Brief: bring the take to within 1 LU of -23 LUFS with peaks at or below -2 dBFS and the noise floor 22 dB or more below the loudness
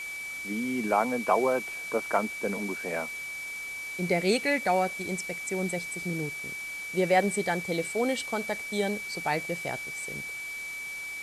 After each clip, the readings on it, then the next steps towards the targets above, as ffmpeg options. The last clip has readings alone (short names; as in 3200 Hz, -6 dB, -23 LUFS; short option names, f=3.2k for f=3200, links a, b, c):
steady tone 2300 Hz; tone level -35 dBFS; noise floor -38 dBFS; noise floor target -52 dBFS; loudness -29.5 LUFS; peak -10.0 dBFS; loudness target -23.0 LUFS
-> -af "bandreject=f=2.3k:w=30"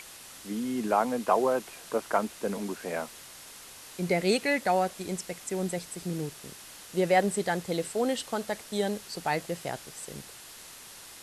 steady tone none; noise floor -48 dBFS; noise floor target -52 dBFS
-> -af "afftdn=nr=6:nf=-48"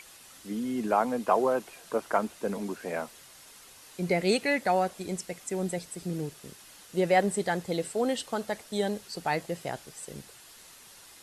noise floor -52 dBFS; loudness -30.0 LUFS; peak -10.5 dBFS; loudness target -23.0 LUFS
-> -af "volume=7dB"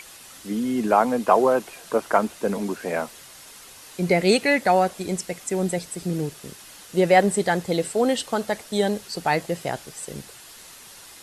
loudness -23.0 LUFS; peak -3.5 dBFS; noise floor -45 dBFS